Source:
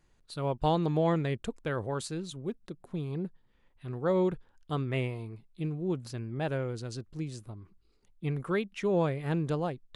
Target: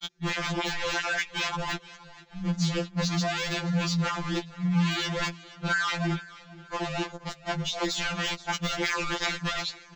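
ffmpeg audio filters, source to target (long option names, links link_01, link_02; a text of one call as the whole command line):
ffmpeg -i in.wav -af "areverse,highshelf=frequency=3100:gain=-11,apsyclip=29.5dB,aresample=16000,aeval=exprs='0.376*(abs(mod(val(0)/0.376+3,4)-2)-1)':channel_layout=same,aresample=44100,tiltshelf=frequency=1300:gain=-8.5,acompressor=threshold=-17dB:ratio=10,aecho=1:1:475|950|1425:0.1|0.04|0.016,deesser=0.4,afreqshift=-290,afftfilt=real='re*2.83*eq(mod(b,8),0)':imag='im*2.83*eq(mod(b,8),0)':win_size=2048:overlap=0.75,volume=-6dB" out.wav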